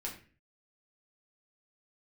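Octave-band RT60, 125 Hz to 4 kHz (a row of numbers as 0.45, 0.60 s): 0.60, 0.55, 0.45, 0.35, 0.45, 0.35 s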